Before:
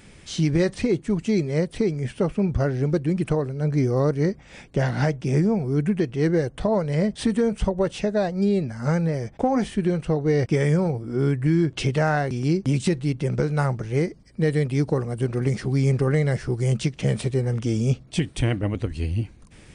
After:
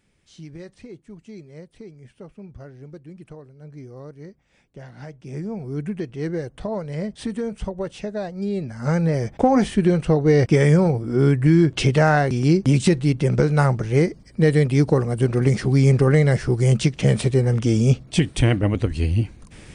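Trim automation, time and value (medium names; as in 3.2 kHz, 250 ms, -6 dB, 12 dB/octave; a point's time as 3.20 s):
4.93 s -18 dB
5.68 s -5.5 dB
8.41 s -5.5 dB
9.19 s +5 dB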